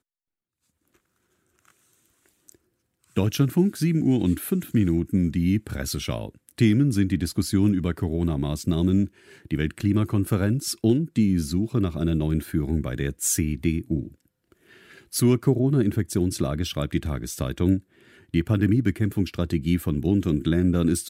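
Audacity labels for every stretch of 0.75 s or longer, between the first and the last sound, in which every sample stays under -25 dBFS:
14.030000	15.140000	silence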